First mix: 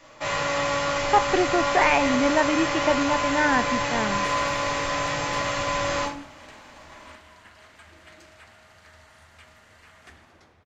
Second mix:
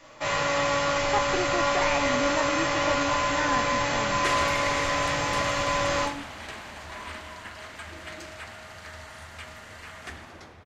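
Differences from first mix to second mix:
speech -8.5 dB; second sound +9.5 dB

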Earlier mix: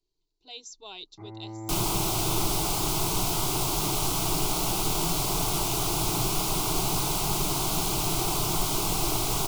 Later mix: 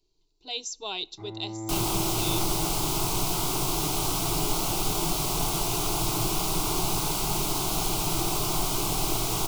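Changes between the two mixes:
speech +8.5 dB; second sound -5.0 dB; reverb: on, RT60 0.55 s

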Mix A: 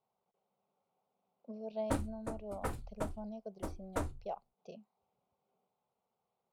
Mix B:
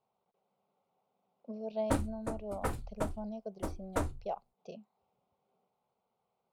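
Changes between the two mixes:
speech +3.5 dB; background +3.5 dB

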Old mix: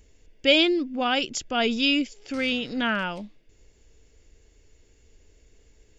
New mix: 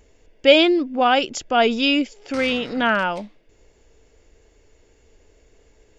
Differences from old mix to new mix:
background +7.0 dB; master: add bell 770 Hz +10 dB 2.5 oct

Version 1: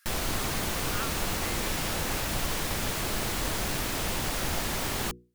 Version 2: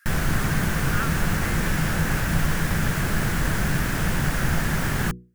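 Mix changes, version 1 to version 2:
background: add low shelf 230 Hz +9.5 dB; master: add fifteen-band EQ 160 Hz +10 dB, 1600 Hz +11 dB, 4000 Hz -4 dB

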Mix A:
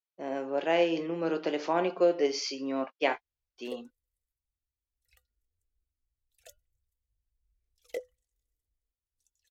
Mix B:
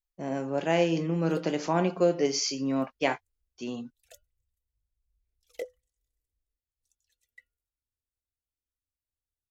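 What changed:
speech: remove Chebyshev band-pass 370–3900 Hz, order 2; background: entry -2.35 s

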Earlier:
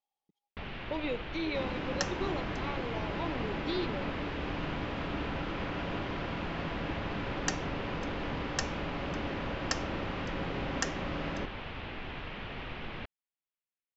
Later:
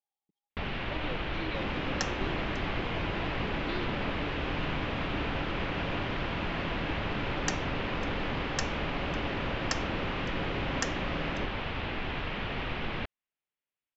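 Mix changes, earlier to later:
speech -6.0 dB; first sound +6.5 dB

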